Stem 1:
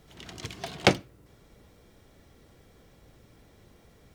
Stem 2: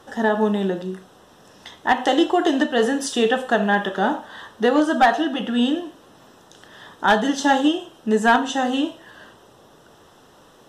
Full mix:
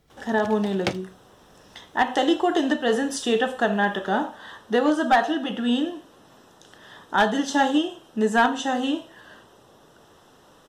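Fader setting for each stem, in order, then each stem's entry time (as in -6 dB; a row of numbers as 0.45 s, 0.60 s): -6.0 dB, -3.0 dB; 0.00 s, 0.10 s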